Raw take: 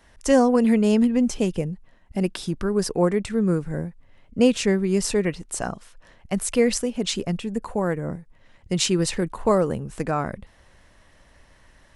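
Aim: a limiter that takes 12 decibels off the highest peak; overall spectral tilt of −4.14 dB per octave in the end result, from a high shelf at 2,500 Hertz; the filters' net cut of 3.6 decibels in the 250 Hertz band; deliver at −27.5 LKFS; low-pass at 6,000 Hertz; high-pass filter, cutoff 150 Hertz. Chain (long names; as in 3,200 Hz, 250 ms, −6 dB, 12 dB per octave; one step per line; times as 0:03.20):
high-pass filter 150 Hz
low-pass filter 6,000 Hz
parametric band 250 Hz −3.5 dB
high-shelf EQ 2,500 Hz +8 dB
level −1.5 dB
brickwall limiter −15.5 dBFS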